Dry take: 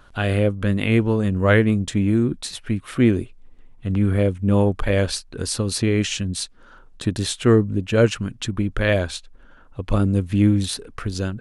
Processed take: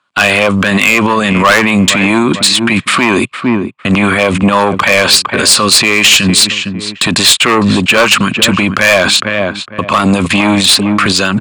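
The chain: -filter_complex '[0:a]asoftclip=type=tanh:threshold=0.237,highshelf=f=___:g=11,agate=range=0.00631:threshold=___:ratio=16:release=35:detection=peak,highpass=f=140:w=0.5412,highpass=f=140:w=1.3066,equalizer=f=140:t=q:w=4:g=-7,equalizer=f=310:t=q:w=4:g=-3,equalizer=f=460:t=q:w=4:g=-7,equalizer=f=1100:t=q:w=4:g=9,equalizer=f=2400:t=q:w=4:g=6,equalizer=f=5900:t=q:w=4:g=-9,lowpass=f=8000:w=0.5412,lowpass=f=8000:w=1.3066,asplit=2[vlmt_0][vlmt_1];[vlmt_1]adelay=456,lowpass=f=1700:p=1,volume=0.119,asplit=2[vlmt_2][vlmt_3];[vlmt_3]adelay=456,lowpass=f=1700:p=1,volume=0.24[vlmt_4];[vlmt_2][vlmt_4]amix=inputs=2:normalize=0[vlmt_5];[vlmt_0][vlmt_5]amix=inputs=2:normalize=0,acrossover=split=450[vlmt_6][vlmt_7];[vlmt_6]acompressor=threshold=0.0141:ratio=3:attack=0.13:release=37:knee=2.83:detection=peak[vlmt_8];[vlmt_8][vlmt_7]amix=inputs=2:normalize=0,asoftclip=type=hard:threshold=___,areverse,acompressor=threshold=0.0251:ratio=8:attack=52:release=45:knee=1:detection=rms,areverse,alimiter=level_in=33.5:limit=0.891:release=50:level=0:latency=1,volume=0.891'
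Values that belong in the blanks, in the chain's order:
2400, 0.0141, 0.119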